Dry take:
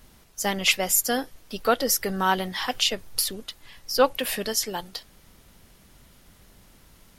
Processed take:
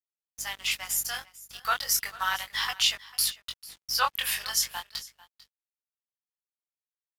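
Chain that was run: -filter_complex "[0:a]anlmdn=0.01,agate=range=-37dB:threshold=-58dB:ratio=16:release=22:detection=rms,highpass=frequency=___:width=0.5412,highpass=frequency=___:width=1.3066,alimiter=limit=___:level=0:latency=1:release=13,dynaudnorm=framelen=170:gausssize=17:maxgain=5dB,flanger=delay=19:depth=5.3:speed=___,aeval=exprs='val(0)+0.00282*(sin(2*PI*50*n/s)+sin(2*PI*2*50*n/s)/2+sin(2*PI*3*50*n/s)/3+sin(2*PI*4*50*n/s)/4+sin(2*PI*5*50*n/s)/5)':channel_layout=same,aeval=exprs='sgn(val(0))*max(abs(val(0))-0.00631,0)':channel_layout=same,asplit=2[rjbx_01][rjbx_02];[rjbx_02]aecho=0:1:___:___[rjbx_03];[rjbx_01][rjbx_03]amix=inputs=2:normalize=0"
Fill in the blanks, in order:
1000, 1000, -14dB, 0.35, 446, 0.106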